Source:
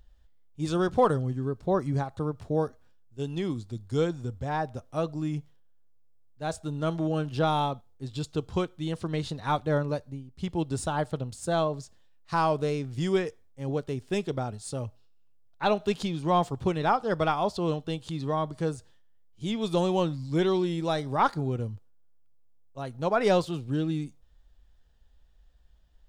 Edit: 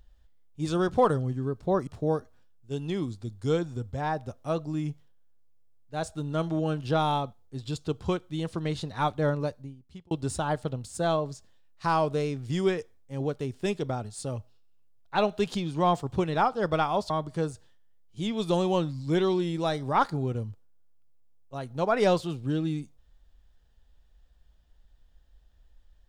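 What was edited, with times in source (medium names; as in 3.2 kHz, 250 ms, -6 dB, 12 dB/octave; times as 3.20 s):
1.87–2.35 s: delete
9.97–10.59 s: fade out linear
17.58–18.34 s: delete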